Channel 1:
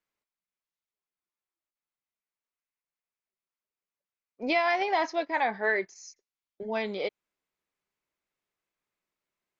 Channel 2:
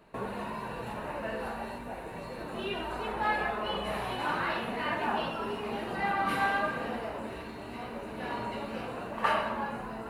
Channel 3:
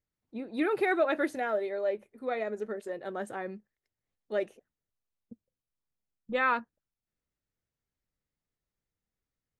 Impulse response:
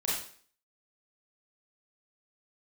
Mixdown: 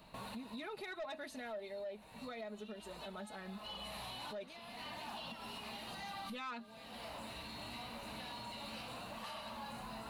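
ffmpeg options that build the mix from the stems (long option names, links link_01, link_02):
-filter_complex "[0:a]acompressor=threshold=-33dB:ratio=6,volume=-18dB[link_01];[1:a]highshelf=frequency=9400:gain=5,acrossover=split=890|3600[link_02][link_03][link_04];[link_02]acompressor=threshold=-46dB:ratio=4[link_05];[link_03]acompressor=threshold=-47dB:ratio=4[link_06];[link_04]acompressor=threshold=-52dB:ratio=4[link_07];[link_05][link_06][link_07]amix=inputs=3:normalize=0,asoftclip=type=tanh:threshold=-34.5dB,volume=2dB[link_08];[2:a]aecho=1:1:4.7:0.91,volume=-5.5dB,asplit=2[link_09][link_10];[link_10]apad=whole_len=445023[link_11];[link_08][link_11]sidechaincompress=threshold=-47dB:ratio=6:attack=10:release=390[link_12];[link_01][link_12][link_09]amix=inputs=3:normalize=0,equalizer=frequency=400:width_type=o:width=0.67:gain=-12,equalizer=frequency=1600:width_type=o:width=0.67:gain=-7,equalizer=frequency=4000:width_type=o:width=0.67:gain=8,asoftclip=type=tanh:threshold=-29.5dB,alimiter=level_in=14.5dB:limit=-24dB:level=0:latency=1:release=168,volume=-14.5dB"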